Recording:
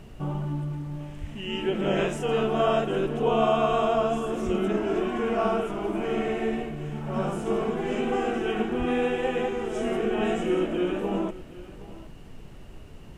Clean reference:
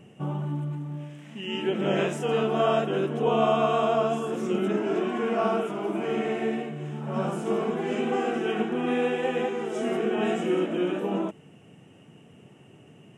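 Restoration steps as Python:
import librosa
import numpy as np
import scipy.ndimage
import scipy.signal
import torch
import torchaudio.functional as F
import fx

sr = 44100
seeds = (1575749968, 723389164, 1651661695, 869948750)

y = fx.highpass(x, sr, hz=140.0, slope=24, at=(1.2, 1.32), fade=0.02)
y = fx.highpass(y, sr, hz=140.0, slope=24, at=(4.45, 4.57), fade=0.02)
y = fx.highpass(y, sr, hz=140.0, slope=24, at=(8.78, 8.9), fade=0.02)
y = fx.noise_reduce(y, sr, print_start_s=12.65, print_end_s=13.15, reduce_db=10.0)
y = fx.fix_echo_inverse(y, sr, delay_ms=766, level_db=-18.0)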